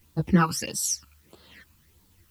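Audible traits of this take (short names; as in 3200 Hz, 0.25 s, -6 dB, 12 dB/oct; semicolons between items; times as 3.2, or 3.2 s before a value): phasing stages 12, 1.6 Hz, lowest notch 590–2300 Hz; a quantiser's noise floor 12-bit, dither triangular; a shimmering, thickened sound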